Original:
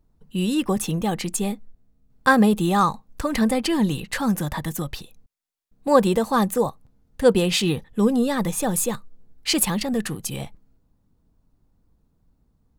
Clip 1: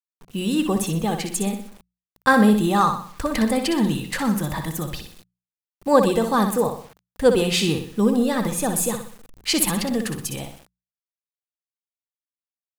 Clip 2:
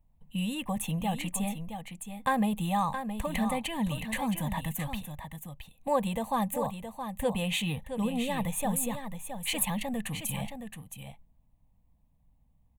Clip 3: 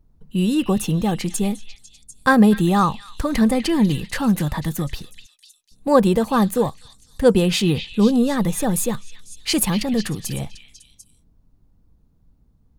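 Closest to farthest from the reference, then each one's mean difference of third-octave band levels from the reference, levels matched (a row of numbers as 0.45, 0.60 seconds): 3, 1, 2; 2.5, 4.0, 5.5 decibels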